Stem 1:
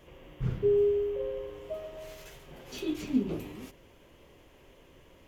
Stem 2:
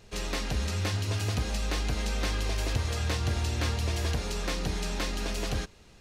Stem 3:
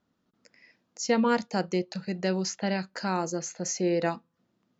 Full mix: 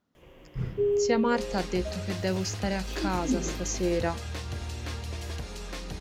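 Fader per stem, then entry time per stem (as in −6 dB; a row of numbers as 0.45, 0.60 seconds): −1.0, −6.5, −1.5 decibels; 0.15, 1.25, 0.00 seconds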